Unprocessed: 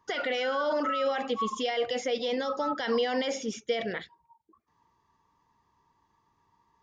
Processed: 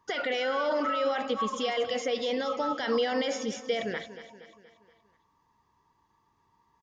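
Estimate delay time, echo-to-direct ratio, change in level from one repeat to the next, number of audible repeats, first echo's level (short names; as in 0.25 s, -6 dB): 0.237 s, -12.0 dB, -6.0 dB, 4, -13.5 dB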